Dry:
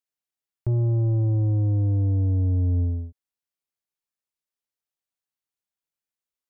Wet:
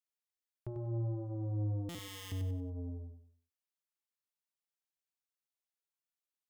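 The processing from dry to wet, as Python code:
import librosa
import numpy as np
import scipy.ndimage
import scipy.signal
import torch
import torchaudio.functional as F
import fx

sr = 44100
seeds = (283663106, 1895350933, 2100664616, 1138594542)

p1 = fx.hum_notches(x, sr, base_hz=60, count=3)
p2 = fx.overflow_wrap(p1, sr, gain_db=33.0, at=(1.89, 2.32))
p3 = fx.low_shelf(p2, sr, hz=320.0, db=-10.5)
p4 = p3 + fx.echo_feedback(p3, sr, ms=95, feedback_pct=34, wet_db=-6, dry=0)
p5 = fx.buffer_glitch(p4, sr, at_s=(1.89,), block=256, repeats=9)
y = F.gain(torch.from_numpy(p5), -7.0).numpy()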